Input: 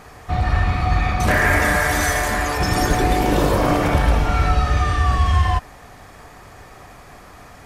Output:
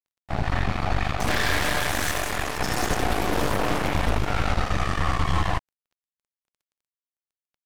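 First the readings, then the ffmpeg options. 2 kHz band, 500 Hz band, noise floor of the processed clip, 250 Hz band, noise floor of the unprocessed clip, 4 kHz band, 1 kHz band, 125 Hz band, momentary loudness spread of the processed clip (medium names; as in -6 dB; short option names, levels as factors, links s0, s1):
-6.5 dB, -6.5 dB, under -85 dBFS, -6.5 dB, -43 dBFS, -1.5 dB, -6.5 dB, -8.5 dB, 4 LU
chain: -af "aeval=exprs='sgn(val(0))*max(abs(val(0))-0.0251,0)':c=same,aeval=exprs='0.596*(cos(1*acos(clip(val(0)/0.596,-1,1)))-cos(1*PI/2))+0.168*(cos(8*acos(clip(val(0)/0.596,-1,1)))-cos(8*PI/2))':c=same,volume=0.355"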